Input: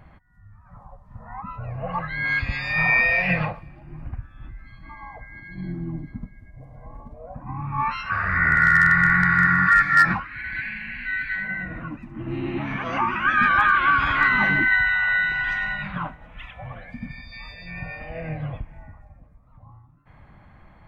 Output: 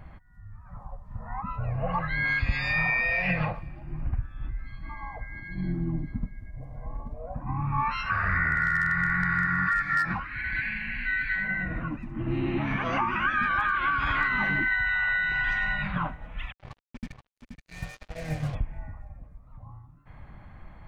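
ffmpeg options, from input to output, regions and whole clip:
-filter_complex "[0:a]asettb=1/sr,asplit=3[a][b][c];[a]atrim=end=16.524[d];[b]atrim=start=16.52:end=18.55,asetpts=PTS-STARTPTS,afade=t=in:d=0.004:c=qsin,afade=t=out:st=2.026:d=0.004:c=qsin,agate=range=-33dB:threshold=-28dB:ratio=3:release=100:detection=peak,acrusher=bits=6:mix=0:aa=0.5,aecho=1:1:477:0.422,atrim=end_sample=89523[e];[c]atrim=start=18.546[f];[d][e]acrossfade=d=0.004:c1=hsin:c2=qsin[g];[g][f]acrossfade=d=0.004:c1=qsin:c2=hsin,acompressor=threshold=-23dB:ratio=6,lowshelf=f=64:g=8.5"

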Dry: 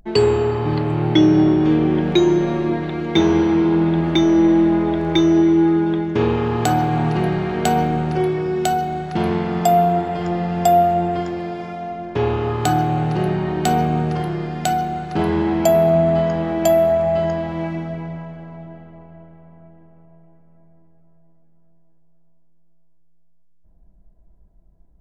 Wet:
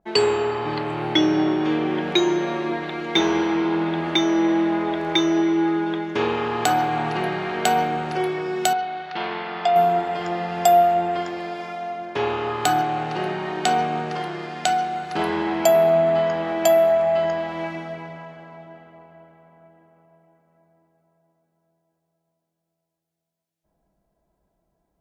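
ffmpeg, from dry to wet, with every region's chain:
-filter_complex "[0:a]asettb=1/sr,asplit=3[a][b][c];[a]atrim=end=8.734[d];[b]atrim=start=8.73:end=9.76,asetpts=PTS-STARTPTS,afade=t=in:d=0.004:c=qsin,afade=t=out:st=1.026:d=0.004:c=qsin,lowpass=f=4.4k:w=0.5412,lowpass=f=4.4k:w=1.3066,lowshelf=f=410:g=-11.5[e];[c]atrim=start=9.756[f];[d][e]acrossfade=d=0.004:c1=hsin:c2=qsin[g];[g][f]acrossfade=d=0.004:c1=qsin:c2=hsin,asettb=1/sr,asplit=3[h][i][j];[h]atrim=end=12.824[k];[i]atrim=start=12.82:end=14.95,asetpts=PTS-STARTPTS,afade=t=in:d=0.004:c=qsin,afade=t=out:st=2.126:d=0.004:c=qsin,aeval=exprs='sgn(val(0))*max(abs(val(0))-0.00596,0)':c=same,highpass=120,lowpass=7.3k[l];[j]atrim=start=14.946[m];[k][l]acrossfade=d=0.004:c1=hsin:c2=qsin[n];[n][m]acrossfade=d=0.004:c1=qsin:c2=hsin,highpass=f=910:p=1,adynamicequalizer=threshold=0.00891:dfrequency=4500:dqfactor=0.7:tfrequency=4500:tqfactor=0.7:attack=5:release=100:ratio=0.375:range=3:mode=cutabove:tftype=highshelf,volume=3.5dB"

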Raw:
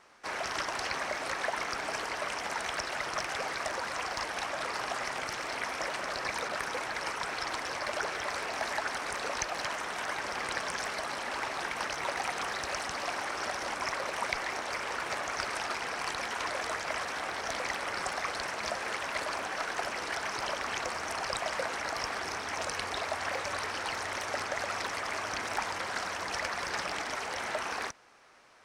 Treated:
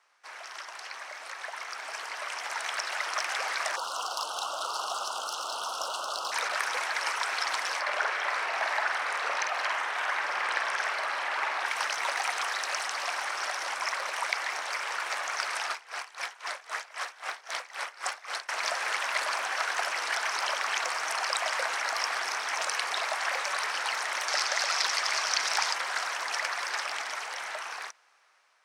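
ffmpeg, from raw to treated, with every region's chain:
-filter_complex "[0:a]asettb=1/sr,asplit=3[a][b][c];[a]atrim=end=3.764[d];[b]atrim=start=3.76:end=6.32,asetpts=PTS-STARTPTS,afade=t=in:d=0.004:c=qsin,afade=t=out:st=2.556:d=0.004:c=qsin,aeval=exprs='clip(val(0),-1,0.0266)':c=same,asuperstop=centerf=2000:order=12:qfactor=1.5[e];[c]atrim=start=6.316[f];[d][e]acrossfade=d=0.004:c1=hsin:c2=qsin[g];[g][f]acrossfade=d=0.004:c1=qsin:c2=hsin,asettb=1/sr,asplit=3[h][i][j];[h]atrim=end=7.814[k];[i]atrim=start=7.81:end=11.66,asetpts=PTS-STARTPTS,afade=t=in:d=0.004:c=qsin,afade=t=out:st=3.846:d=0.004:c=qsin,bass=f=250:g=-2,treble=f=4k:g=-11,asplit=2[l][m];[m]adelay=49,volume=-5dB[n];[l][n]amix=inputs=2:normalize=0,atrim=end_sample=169785[o];[j]atrim=start=11.656[p];[k][o]acrossfade=d=0.004:c1=hsin:c2=qsin[q];[q][p]acrossfade=d=0.004:c1=qsin:c2=hsin,asettb=1/sr,asplit=3[r][s][t];[r]atrim=end=15.714[u];[s]atrim=start=15.71:end=18.49,asetpts=PTS-STARTPTS,afade=t=in:d=0.004:c=qsin,afade=t=out:st=2.776:d=0.004:c=qsin,highpass=220,aeval=exprs='val(0)*pow(10,-22*(0.5-0.5*cos(2*PI*3.8*n/s))/20)':c=same[v];[t]atrim=start=18.486[w];[u][v]acrossfade=d=0.004:c1=hsin:c2=qsin[x];[x][w]acrossfade=d=0.004:c1=qsin:c2=hsin,asettb=1/sr,asplit=3[y][z][aa];[y]atrim=end=24.284[ab];[z]atrim=start=24.28:end=25.74,asetpts=PTS-STARTPTS,afade=t=in:d=0.004:c=qsin,afade=t=out:st=1.456:d=0.004:c=qsin,highpass=61,equalizer=f=5k:w=1.2:g=9.5[ac];[aa]atrim=start=25.736[ad];[ab][ac]acrossfade=d=0.004:c1=hsin:c2=qsin[ae];[ae][ad]acrossfade=d=0.004:c1=qsin:c2=hsin,highpass=830,dynaudnorm=f=710:g=7:m=13dB,volume=-7dB"

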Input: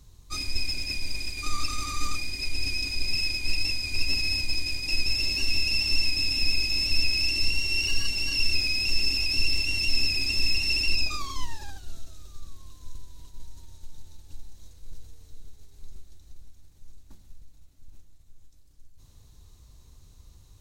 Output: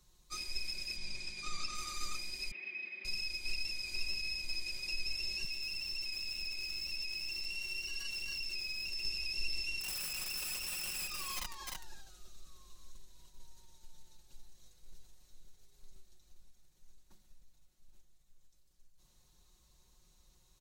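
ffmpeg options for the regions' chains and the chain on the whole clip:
-filter_complex "[0:a]asettb=1/sr,asplit=3[a][b][c];[a]atrim=end=0.964[d];[b]atrim=start=0.96:end=1.75,asetpts=PTS-STARTPTS,afade=t=in:d=0.004:c=qsin,afade=t=out:st=0.786:d=0.004:c=qsin,lowpass=7.3k,aeval=exprs='val(0)+0.00891*(sin(2*PI*50*n/s)+sin(2*PI*2*50*n/s)/2+sin(2*PI*3*50*n/s)/3+sin(2*PI*4*50*n/s)/4+sin(2*PI*5*50*n/s)/5)':c=same[e];[c]atrim=start=1.746[f];[d][e]acrossfade=d=0.004:c1=hsin:c2=qsin[g];[g][f]acrossfade=d=0.004:c1=qsin:c2=hsin,asettb=1/sr,asplit=3[h][i][j];[h]atrim=end=2.514[k];[i]atrim=start=2.51:end=3.05,asetpts=PTS-STARTPTS,afade=t=in:d=0.004:c=qsin,afade=t=out:st=0.536:d=0.004:c=qsin,bandreject=f=730:w=16,acrusher=bits=7:mode=log:mix=0:aa=0.000001,highpass=f=230:w=0.5412,highpass=f=230:w=1.3066,equalizer=f=290:t=q:w=4:g=-9,equalizer=f=480:t=q:w=4:g=-6,equalizer=f=930:t=q:w=4:g=-8,equalizer=f=1.4k:t=q:w=4:g=-8,equalizer=f=2k:t=q:w=4:g=8,lowpass=f=2.5k:w=0.5412,lowpass=f=2.5k:w=1.3066[l];[j]atrim=start=3.046[m];[k][l]acrossfade=d=0.004:c1=hsin:c2=qsin[n];[n][m]acrossfade=d=0.004:c1=qsin:c2=hsin,asettb=1/sr,asplit=3[o][p][q];[o]atrim=end=5.444[r];[p]atrim=start=5.44:end=9.05,asetpts=PTS-STARTPTS,afade=t=in:d=0.004:c=qsin,afade=t=out:st=3.606:d=0.004:c=qsin,aeval=exprs='val(0)+0.5*0.0224*sgn(val(0))':c=same,acrossover=split=180|360[s][t][u];[s]acompressor=threshold=-30dB:ratio=4[v];[t]acompressor=threshold=-56dB:ratio=4[w];[u]acompressor=threshold=-32dB:ratio=4[x];[v][w][x]amix=inputs=3:normalize=0[y];[q]atrim=start=9.046[z];[r][y]acrossfade=d=0.004:c1=hsin:c2=qsin[aa];[aa][z]acrossfade=d=0.004:c1=qsin:c2=hsin,asettb=1/sr,asplit=3[ab][ac][ad];[ab]atrim=end=9.804[ae];[ac]atrim=start=9.8:end=12.91,asetpts=PTS-STARTPTS,afade=t=in:d=0.004:c=qsin,afade=t=out:st=3.106:d=0.004:c=qsin,aeval=exprs='(mod(10*val(0)+1,2)-1)/10':c=same,acompressor=threshold=-30dB:ratio=2:attack=3.2:release=140:knee=1:detection=peak,aecho=1:1:303:0.531,atrim=end_sample=137151[af];[ad]atrim=start=12.906[ag];[ae][af]acrossfade=d=0.004:c1=hsin:c2=qsin[ah];[ah][ag]acrossfade=d=0.004:c1=qsin:c2=hsin,lowshelf=f=300:g=-9.5,aecho=1:1:5.5:0.7,acrossover=split=130[ai][aj];[aj]acompressor=threshold=-28dB:ratio=6[ak];[ai][ak]amix=inputs=2:normalize=0,volume=-8.5dB"

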